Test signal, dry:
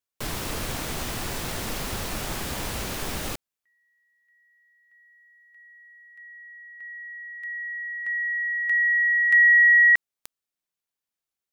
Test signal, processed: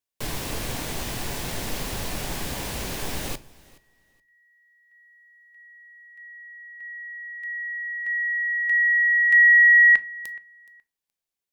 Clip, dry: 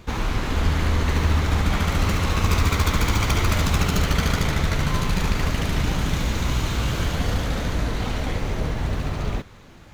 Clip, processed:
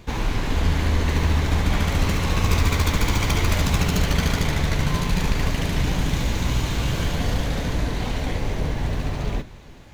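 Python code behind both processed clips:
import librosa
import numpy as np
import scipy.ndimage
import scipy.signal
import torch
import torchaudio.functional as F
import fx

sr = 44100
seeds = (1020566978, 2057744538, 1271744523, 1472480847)

p1 = fx.peak_eq(x, sr, hz=1300.0, db=-6.5, octaves=0.27)
p2 = p1 + fx.echo_feedback(p1, sr, ms=422, feedback_pct=19, wet_db=-23, dry=0)
y = fx.room_shoebox(p2, sr, seeds[0], volume_m3=140.0, walls='furnished', distance_m=0.3)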